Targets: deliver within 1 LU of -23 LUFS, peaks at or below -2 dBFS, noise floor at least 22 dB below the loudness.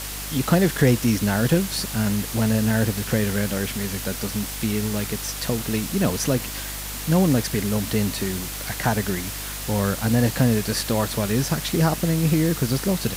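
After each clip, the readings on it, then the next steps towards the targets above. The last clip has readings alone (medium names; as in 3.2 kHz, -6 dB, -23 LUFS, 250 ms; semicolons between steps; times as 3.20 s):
hum 50 Hz; highest harmonic 300 Hz; hum level -34 dBFS; noise floor -32 dBFS; noise floor target -45 dBFS; loudness -22.5 LUFS; peak level -5.5 dBFS; loudness target -23.0 LUFS
-> de-hum 50 Hz, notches 6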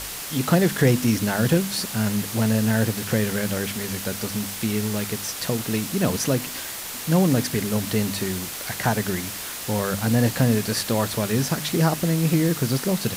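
hum not found; noise floor -33 dBFS; noise floor target -45 dBFS
-> noise reduction 12 dB, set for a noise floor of -33 dBFS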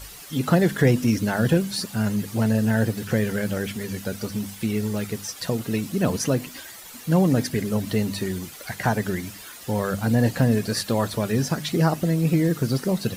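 noise floor -42 dBFS; noise floor target -46 dBFS
-> noise reduction 6 dB, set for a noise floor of -42 dBFS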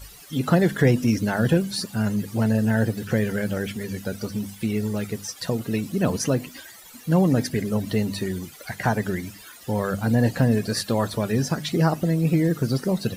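noise floor -45 dBFS; noise floor target -46 dBFS
-> noise reduction 6 dB, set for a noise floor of -45 dBFS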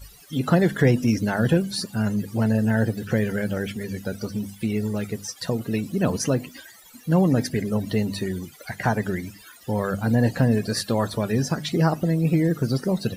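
noise floor -48 dBFS; loudness -24.0 LUFS; peak level -6.0 dBFS; loudness target -23.0 LUFS
-> trim +1 dB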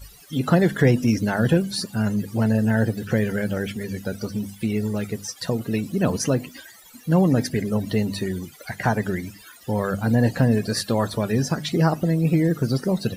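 loudness -23.0 LUFS; peak level -5.0 dBFS; noise floor -47 dBFS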